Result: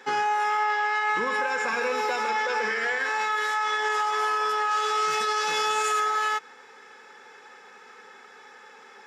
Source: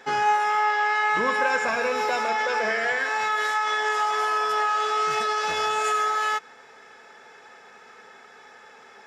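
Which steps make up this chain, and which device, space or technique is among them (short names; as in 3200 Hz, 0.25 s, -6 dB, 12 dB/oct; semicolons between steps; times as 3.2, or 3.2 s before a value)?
PA system with an anti-feedback notch (HPF 190 Hz 12 dB/oct; Butterworth band-stop 650 Hz, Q 4.5; limiter -18 dBFS, peak gain reduction 6 dB); 4.71–6 high shelf 4100 Hz +6 dB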